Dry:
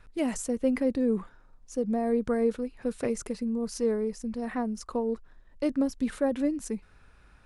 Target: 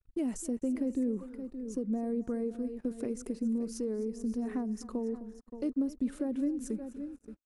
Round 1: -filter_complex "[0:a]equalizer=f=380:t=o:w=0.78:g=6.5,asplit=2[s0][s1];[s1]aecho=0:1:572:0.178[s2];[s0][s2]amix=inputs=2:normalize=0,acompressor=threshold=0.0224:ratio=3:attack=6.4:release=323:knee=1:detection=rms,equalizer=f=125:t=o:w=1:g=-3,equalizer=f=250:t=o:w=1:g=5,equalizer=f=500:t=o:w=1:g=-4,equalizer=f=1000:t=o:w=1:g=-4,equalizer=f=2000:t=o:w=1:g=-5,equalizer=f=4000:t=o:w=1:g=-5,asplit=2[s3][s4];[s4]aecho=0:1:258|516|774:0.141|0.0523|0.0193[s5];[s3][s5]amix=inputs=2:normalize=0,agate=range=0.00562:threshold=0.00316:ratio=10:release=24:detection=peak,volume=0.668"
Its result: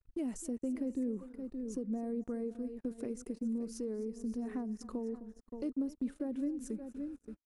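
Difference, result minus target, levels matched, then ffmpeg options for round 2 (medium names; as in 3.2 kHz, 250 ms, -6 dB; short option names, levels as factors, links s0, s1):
compression: peak gain reduction +4.5 dB
-filter_complex "[0:a]equalizer=f=380:t=o:w=0.78:g=6.5,asplit=2[s0][s1];[s1]aecho=0:1:572:0.178[s2];[s0][s2]amix=inputs=2:normalize=0,acompressor=threshold=0.0473:ratio=3:attack=6.4:release=323:knee=1:detection=rms,equalizer=f=125:t=o:w=1:g=-3,equalizer=f=250:t=o:w=1:g=5,equalizer=f=500:t=o:w=1:g=-4,equalizer=f=1000:t=o:w=1:g=-4,equalizer=f=2000:t=o:w=1:g=-5,equalizer=f=4000:t=o:w=1:g=-5,asplit=2[s3][s4];[s4]aecho=0:1:258|516|774:0.141|0.0523|0.0193[s5];[s3][s5]amix=inputs=2:normalize=0,agate=range=0.00562:threshold=0.00316:ratio=10:release=24:detection=peak,volume=0.668"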